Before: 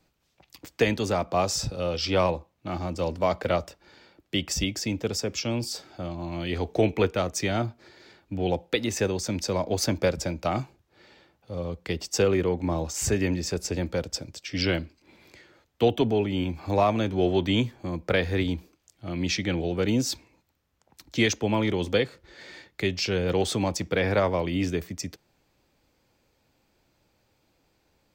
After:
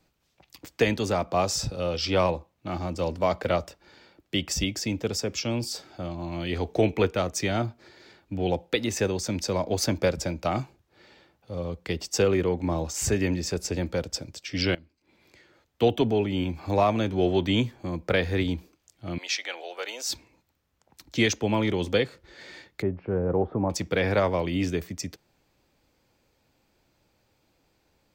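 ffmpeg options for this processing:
ffmpeg -i in.wav -filter_complex "[0:a]asettb=1/sr,asplit=3[link_01][link_02][link_03];[link_01]atrim=end=19.184[link_04];[link_02]atrim=start=19.18:end=20.1,asetpts=PTS-STARTPTS,afade=type=in:duration=0.004:curve=qsin,afade=type=out:start_time=0.916:duration=0.004:curve=qsin,highpass=frequency=610:width=0.5412,highpass=frequency=610:width=1.3066[link_05];[link_03]atrim=start=20.096[link_06];[link_04][link_05]acrossfade=duration=0.004:curve1=hsin:curve2=qsin[link_07];[link_07][link_06]acrossfade=duration=0.004:curve1=qsin:curve2=hsin,asettb=1/sr,asplit=3[link_08][link_09][link_10];[link_08]atrim=end=22.824[link_11];[link_09]atrim=start=22.82:end=23.7,asetpts=PTS-STARTPTS,afade=type=in:duration=0.004:curve=qsin,afade=type=out:start_time=0.876:duration=0.004:curve=qsin,lowpass=frequency=1200:width=0.5412,lowpass=frequency=1200:width=1.3066[link_12];[link_10]atrim=start=23.696[link_13];[link_11][link_12]acrossfade=duration=0.004:curve1=hsin:curve2=qsin[link_14];[link_14][link_13]acrossfade=duration=0.004:curve1=qsin:curve2=hsin,asplit=2[link_15][link_16];[link_15]atrim=end=14.75,asetpts=PTS-STARTPTS,afade=type=out:start_time=14.746:duration=0.004:curve=hsin:silence=0.0841395[link_17];[link_16]atrim=start=14.75,asetpts=PTS-STARTPTS,afade=type=in:duration=1.11:silence=0.0841395[link_18];[link_17][link_18]concat=n=2:v=0:a=1" out.wav

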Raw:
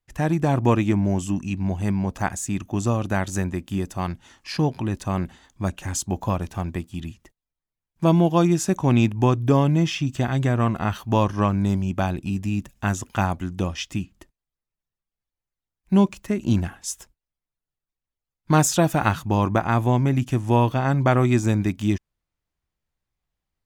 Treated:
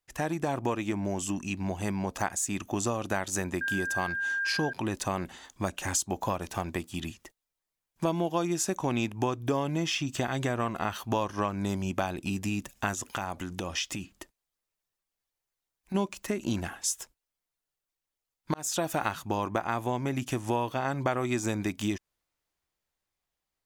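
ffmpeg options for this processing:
ffmpeg -i in.wav -filter_complex "[0:a]asettb=1/sr,asplit=3[link_01][link_02][link_03];[link_01]atrim=end=3.614[link_04];[link_02]atrim=start=3.61:end=4.73,asetpts=PTS-STARTPTS,afade=type=in:duration=0.004:curve=qsin,afade=type=out:start_time=1.116:duration=0.004:curve=qsin,aeval=exprs='val(0)+0.0316*sin(2*PI*1600*n/s)':channel_layout=same[link_05];[link_03]atrim=start=4.726[link_06];[link_04][link_05]acrossfade=duration=0.004:curve1=hsin:curve2=qsin[link_07];[link_07][link_06]acrossfade=duration=0.004:curve1=qsin:curve2=hsin,asplit=3[link_08][link_09][link_10];[link_08]afade=type=out:start_time=12.94:duration=0.02[link_11];[link_09]acompressor=threshold=-29dB:ratio=6:attack=3.2:release=140:knee=1:detection=peak,afade=type=in:start_time=12.94:duration=0.02,afade=type=out:start_time=15.94:duration=0.02[link_12];[link_10]afade=type=in:start_time=15.94:duration=0.02[link_13];[link_11][link_12][link_13]amix=inputs=3:normalize=0,asplit=2[link_14][link_15];[link_14]atrim=end=18.54,asetpts=PTS-STARTPTS,afade=type=out:start_time=18.536:duration=0.004:curve=hsin[link_16];[link_15]atrim=start=18.54,asetpts=PTS-STARTPTS,afade=type=in:duration=0.43[link_17];[link_16][link_17]concat=n=2:v=0:a=1,dynaudnorm=framelen=740:gausssize=5:maxgain=5dB,bass=frequency=250:gain=-11,treble=frequency=4000:gain=3,acompressor=threshold=-28dB:ratio=3" out.wav

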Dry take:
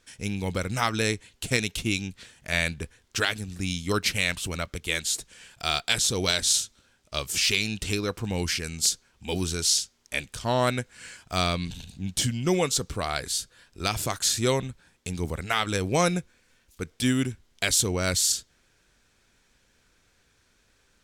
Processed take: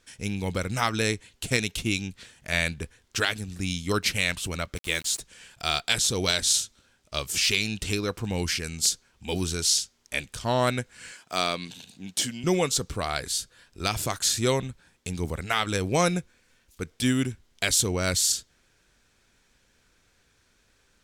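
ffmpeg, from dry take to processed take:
ffmpeg -i in.wav -filter_complex "[0:a]asplit=3[link_01][link_02][link_03];[link_01]afade=type=out:start_time=4.75:duration=0.02[link_04];[link_02]aeval=exprs='val(0)*gte(abs(val(0)),0.0119)':channel_layout=same,afade=type=in:start_time=4.75:duration=0.02,afade=type=out:start_time=5.19:duration=0.02[link_05];[link_03]afade=type=in:start_time=5.19:duration=0.02[link_06];[link_04][link_05][link_06]amix=inputs=3:normalize=0,asettb=1/sr,asplit=3[link_07][link_08][link_09];[link_07]atrim=end=11.124[link_10];[link_08]atrim=start=11.12:end=12.44,asetpts=PTS-STARTPTS,afade=type=in:duration=0.004:curve=qsin,afade=type=out:start_time=1.316:duration=0.004:curve=qsin,highpass=260[link_11];[link_09]atrim=start=12.436[link_12];[link_10][link_11]acrossfade=duration=0.004:curve1=hsin:curve2=qsin[link_13];[link_13][link_12]acrossfade=duration=0.004:curve1=qsin:curve2=hsin" out.wav

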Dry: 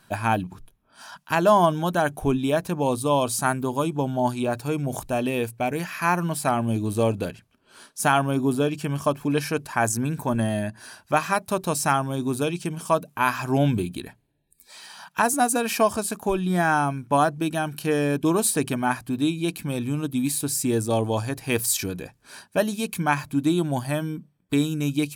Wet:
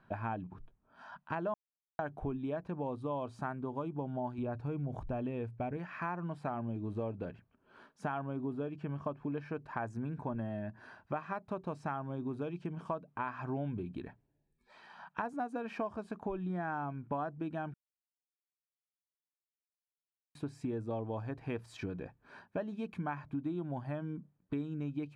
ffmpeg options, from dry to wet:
ffmpeg -i in.wav -filter_complex "[0:a]asettb=1/sr,asplit=3[link_01][link_02][link_03];[link_01]atrim=end=4.384[link_04];[link_02]atrim=start=4.38:end=5.77,asetpts=PTS-STARTPTS,afade=type=in:duration=0.004:curve=qsin,afade=type=out:start_time=1.386:duration=0.004:curve=qsin,lowshelf=frequency=130:gain=12[link_05];[link_03]atrim=start=5.766[link_06];[link_04][link_05]acrossfade=duration=0.004:curve1=hsin:curve2=qsin[link_07];[link_07][link_06]acrossfade=duration=0.004:curve1=qsin:curve2=hsin,asettb=1/sr,asplit=3[link_08][link_09][link_10];[link_08]atrim=end=8.684[link_11];[link_09]atrim=start=8.68:end=9.62,asetpts=PTS-STARTPTS,afade=type=in:duration=0.004:curve=qsin,afade=type=out:start_time=0.936:duration=0.004:curve=qsin,highshelf=frequency=7300:gain=-7[link_12];[link_10]atrim=start=9.616[link_13];[link_11][link_12]acrossfade=duration=0.004:curve1=hsin:curve2=qsin[link_14];[link_14][link_13]acrossfade=duration=0.004:curve1=qsin:curve2=hsin,asplit=5[link_15][link_16][link_17][link_18][link_19];[link_15]atrim=end=1.54,asetpts=PTS-STARTPTS,afade=type=out:start_time=1.536:duration=0.004:curve=hsin[link_20];[link_16]atrim=start=1.54:end=1.99,asetpts=PTS-STARTPTS,volume=0[link_21];[link_17]atrim=start=1.99:end=17.74,asetpts=PTS-STARTPTS,afade=type=in:duration=0.004:curve=hsin,afade=type=out:start_time=15.746:duration=0.004:curve=hsin[link_22];[link_18]atrim=start=17.74:end=20.35,asetpts=PTS-STARTPTS,volume=0[link_23];[link_19]atrim=start=20.35,asetpts=PTS-STARTPTS,afade=type=in:duration=0.004:curve=hsin[link_24];[link_20][link_21][link_22][link_23][link_24]concat=n=5:v=0:a=1,lowpass=1600,acompressor=threshold=-30dB:ratio=4,volume=-5.5dB" out.wav

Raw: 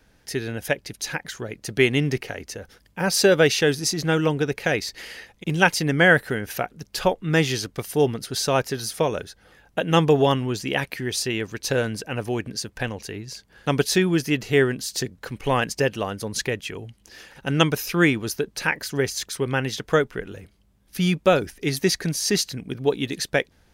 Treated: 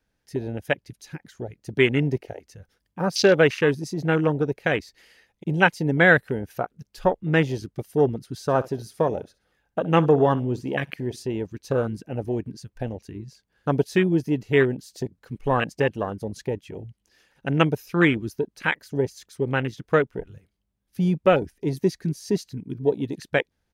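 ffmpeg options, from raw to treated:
ffmpeg -i in.wav -filter_complex "[0:a]asplit=3[link_01][link_02][link_03];[link_01]afade=type=out:start_time=8.48:duration=0.02[link_04];[link_02]aecho=1:1:64|128|192:0.15|0.0539|0.0194,afade=type=in:start_time=8.48:duration=0.02,afade=type=out:start_time=11.23:duration=0.02[link_05];[link_03]afade=type=in:start_time=11.23:duration=0.02[link_06];[link_04][link_05][link_06]amix=inputs=3:normalize=0,afwtdn=0.0562" out.wav

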